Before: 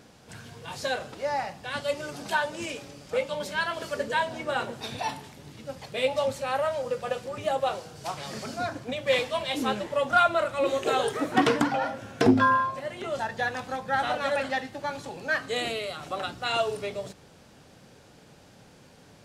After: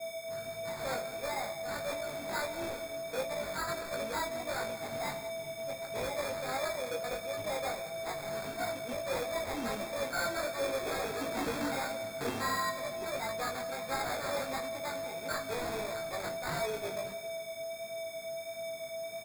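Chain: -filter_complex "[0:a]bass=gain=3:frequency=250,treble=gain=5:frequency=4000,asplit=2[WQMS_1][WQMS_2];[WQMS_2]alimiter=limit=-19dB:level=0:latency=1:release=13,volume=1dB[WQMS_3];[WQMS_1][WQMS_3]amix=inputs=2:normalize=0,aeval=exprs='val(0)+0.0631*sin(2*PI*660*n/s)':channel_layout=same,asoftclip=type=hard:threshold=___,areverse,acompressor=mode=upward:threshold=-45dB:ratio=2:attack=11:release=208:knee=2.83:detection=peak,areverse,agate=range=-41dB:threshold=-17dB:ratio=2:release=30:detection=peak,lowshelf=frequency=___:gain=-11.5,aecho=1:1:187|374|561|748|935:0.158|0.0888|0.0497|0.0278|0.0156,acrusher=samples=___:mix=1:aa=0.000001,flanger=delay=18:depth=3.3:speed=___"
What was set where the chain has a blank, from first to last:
-22dB, 100, 15, 1.5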